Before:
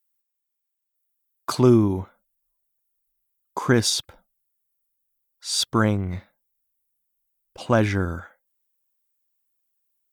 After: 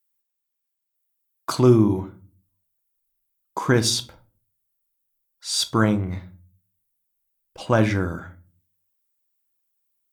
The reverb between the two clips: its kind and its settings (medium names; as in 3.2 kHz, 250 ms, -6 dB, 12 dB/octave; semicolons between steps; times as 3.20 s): simulated room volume 230 m³, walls furnished, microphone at 0.59 m